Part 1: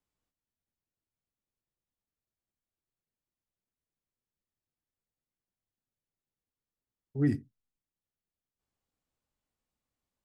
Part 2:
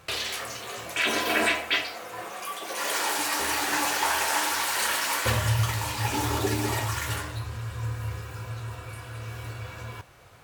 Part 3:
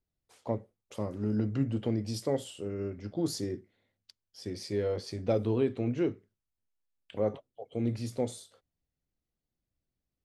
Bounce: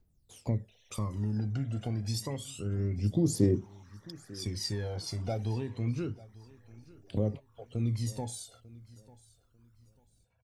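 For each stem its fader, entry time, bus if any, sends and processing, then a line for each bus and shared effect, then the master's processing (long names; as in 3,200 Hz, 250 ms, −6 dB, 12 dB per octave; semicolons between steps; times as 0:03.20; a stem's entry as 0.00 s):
−9.5 dB, 0.00 s, bus A, no send, no echo send, high-pass filter 610 Hz 6 dB per octave
−19.0 dB, 0.60 s, bus A, no send, no echo send, spectral envelope exaggerated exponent 2; transistor ladder low-pass 6,100 Hz, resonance 80%; step-sequenced phaser 3.4 Hz 320–3,700 Hz
+0.5 dB, 0.00 s, no bus, no send, echo send −21 dB, downward compressor 2 to 1, threshold −39 dBFS, peak gain reduction 9.5 dB; phase shifter 0.29 Hz, delay 1.5 ms, feedback 76%; bass and treble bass +6 dB, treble +14 dB
bus A: 0.0 dB, Butterworth band-reject 4,700 Hz, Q 2.7; downward compressor, threshold −59 dBFS, peak gain reduction 18 dB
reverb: not used
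echo: repeating echo 895 ms, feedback 27%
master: high-shelf EQ 4,600 Hz −10 dB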